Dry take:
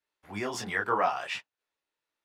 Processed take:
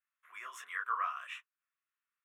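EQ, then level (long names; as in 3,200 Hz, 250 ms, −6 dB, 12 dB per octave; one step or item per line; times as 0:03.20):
dynamic equaliser 1,900 Hz, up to −6 dB, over −43 dBFS, Q 1.2
four-pole ladder high-pass 1,000 Hz, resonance 65%
phaser with its sweep stopped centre 2,000 Hz, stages 4
+5.0 dB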